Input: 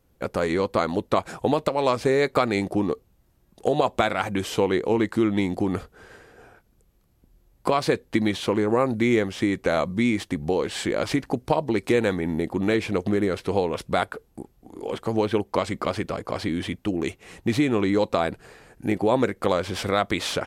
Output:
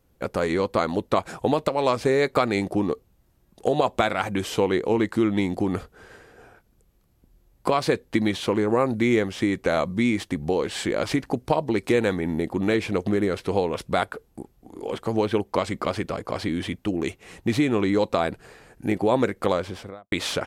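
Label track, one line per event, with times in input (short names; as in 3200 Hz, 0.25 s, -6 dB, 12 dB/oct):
19.440000	20.120000	studio fade out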